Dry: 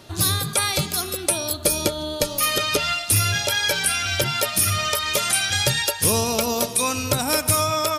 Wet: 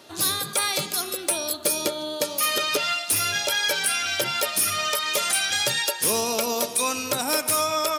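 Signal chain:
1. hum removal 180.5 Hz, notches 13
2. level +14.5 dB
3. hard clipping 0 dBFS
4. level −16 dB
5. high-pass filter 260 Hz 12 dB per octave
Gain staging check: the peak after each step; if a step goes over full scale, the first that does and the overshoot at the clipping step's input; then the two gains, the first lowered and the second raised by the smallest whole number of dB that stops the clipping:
−9.0, +5.5, 0.0, −16.0, −10.5 dBFS
step 2, 5.5 dB
step 2 +8.5 dB, step 4 −10 dB

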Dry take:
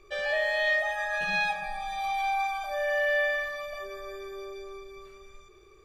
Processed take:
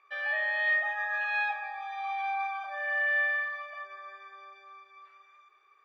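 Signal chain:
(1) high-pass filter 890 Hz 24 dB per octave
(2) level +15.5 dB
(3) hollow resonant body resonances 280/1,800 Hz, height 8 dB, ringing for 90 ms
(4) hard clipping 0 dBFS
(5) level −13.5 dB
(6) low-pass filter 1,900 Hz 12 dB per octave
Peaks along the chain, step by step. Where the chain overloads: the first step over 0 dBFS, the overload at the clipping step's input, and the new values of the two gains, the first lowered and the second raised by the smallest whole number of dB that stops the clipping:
−19.0, −3.5, −2.5, −2.5, −16.0, −19.5 dBFS
no step passes full scale

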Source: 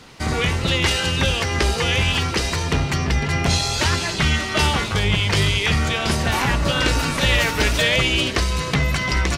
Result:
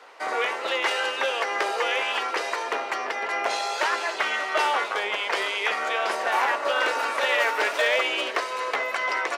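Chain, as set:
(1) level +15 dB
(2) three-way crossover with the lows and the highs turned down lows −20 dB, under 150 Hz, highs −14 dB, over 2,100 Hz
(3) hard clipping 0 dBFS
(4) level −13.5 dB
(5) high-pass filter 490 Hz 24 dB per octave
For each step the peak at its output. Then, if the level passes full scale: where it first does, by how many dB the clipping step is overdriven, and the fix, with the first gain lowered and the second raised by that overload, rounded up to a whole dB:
+10.0, +6.5, 0.0, −13.5, −10.5 dBFS
step 1, 6.5 dB
step 1 +8 dB, step 4 −6.5 dB

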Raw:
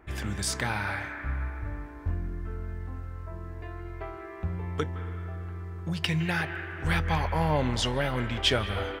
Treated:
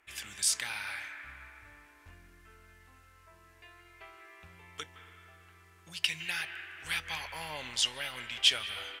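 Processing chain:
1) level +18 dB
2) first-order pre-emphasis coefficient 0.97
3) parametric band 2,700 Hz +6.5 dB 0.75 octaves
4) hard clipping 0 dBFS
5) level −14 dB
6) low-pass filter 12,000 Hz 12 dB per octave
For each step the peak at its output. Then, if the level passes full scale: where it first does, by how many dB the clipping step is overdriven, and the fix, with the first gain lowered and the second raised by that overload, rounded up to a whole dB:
+6.5, +0.5, +3.5, 0.0, −14.0, −13.0 dBFS
step 1, 3.5 dB
step 1 +14 dB, step 5 −10 dB

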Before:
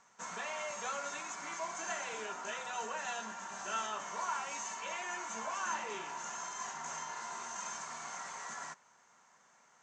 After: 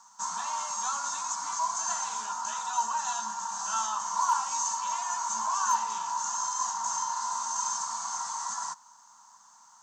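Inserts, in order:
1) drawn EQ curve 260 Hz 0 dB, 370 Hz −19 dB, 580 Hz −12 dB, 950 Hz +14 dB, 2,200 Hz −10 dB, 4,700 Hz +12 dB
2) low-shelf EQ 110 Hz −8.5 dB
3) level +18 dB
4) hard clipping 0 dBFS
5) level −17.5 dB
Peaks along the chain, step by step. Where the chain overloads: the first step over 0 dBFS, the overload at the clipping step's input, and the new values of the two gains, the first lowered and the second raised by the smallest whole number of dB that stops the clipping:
−15.0, −15.0, +3.0, 0.0, −17.5 dBFS
step 3, 3.0 dB
step 3 +15 dB, step 5 −14.5 dB

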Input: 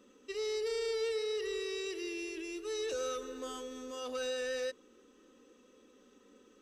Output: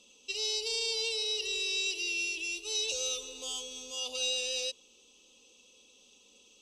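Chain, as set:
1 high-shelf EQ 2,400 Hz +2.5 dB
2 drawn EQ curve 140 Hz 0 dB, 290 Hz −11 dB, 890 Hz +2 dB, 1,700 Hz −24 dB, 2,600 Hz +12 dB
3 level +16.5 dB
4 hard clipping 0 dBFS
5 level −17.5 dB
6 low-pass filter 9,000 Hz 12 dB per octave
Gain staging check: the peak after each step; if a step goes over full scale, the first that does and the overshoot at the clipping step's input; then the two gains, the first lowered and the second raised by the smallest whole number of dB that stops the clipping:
−25.5, −18.0, −1.5, −1.5, −19.0, −19.5 dBFS
no step passes full scale

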